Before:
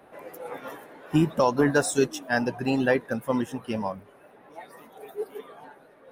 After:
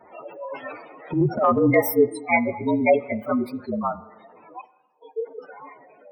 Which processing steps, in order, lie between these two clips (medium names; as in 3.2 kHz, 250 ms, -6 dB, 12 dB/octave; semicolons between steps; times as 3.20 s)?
frequency axis rescaled in octaves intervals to 115%; 4.61–5.48 s: gate -45 dBFS, range -26 dB; spectral gate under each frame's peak -15 dB strong; bass shelf 250 Hz -9.5 dB; 1.10–1.75 s: transient shaper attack -9 dB, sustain +8 dB; reverberation RT60 1.1 s, pre-delay 32 ms, DRR 17 dB; trim +9 dB